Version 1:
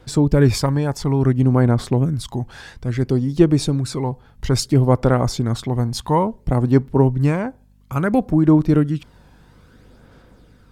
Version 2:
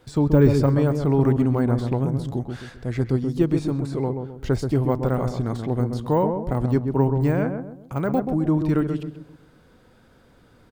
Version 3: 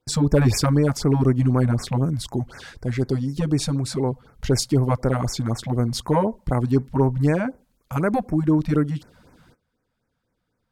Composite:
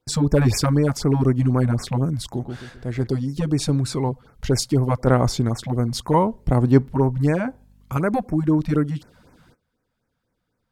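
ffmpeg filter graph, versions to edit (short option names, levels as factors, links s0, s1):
-filter_complex "[0:a]asplit=4[s0][s1][s2][s3];[2:a]asplit=6[s4][s5][s6][s7][s8][s9];[s4]atrim=end=2.332[s10];[1:a]atrim=start=2.328:end=3.072[s11];[s5]atrim=start=3.068:end=3.692[s12];[s0]atrim=start=3.688:end=4.092[s13];[s6]atrim=start=4.088:end=5.072[s14];[s1]atrim=start=5.068:end=5.492[s15];[s7]atrim=start=5.488:end=6.142[s16];[s2]atrim=start=6.138:end=6.932[s17];[s8]atrim=start=6.928:end=7.482[s18];[s3]atrim=start=7.478:end=7.972[s19];[s9]atrim=start=7.968[s20];[s10][s11]acrossfade=d=0.004:c1=hsin:c2=hsin[s21];[s21][s12]acrossfade=d=0.004:c1=hsin:c2=hsin[s22];[s22][s13]acrossfade=d=0.004:c1=hsin:c2=hsin[s23];[s23][s14]acrossfade=d=0.004:c1=hsin:c2=hsin[s24];[s24][s15]acrossfade=d=0.004:c1=hsin:c2=hsin[s25];[s25][s16]acrossfade=d=0.004:c1=hsin:c2=hsin[s26];[s26][s17]acrossfade=d=0.004:c1=hsin:c2=hsin[s27];[s27][s18]acrossfade=d=0.004:c1=hsin:c2=hsin[s28];[s28][s19]acrossfade=d=0.004:c1=hsin:c2=hsin[s29];[s29][s20]acrossfade=d=0.004:c1=hsin:c2=hsin"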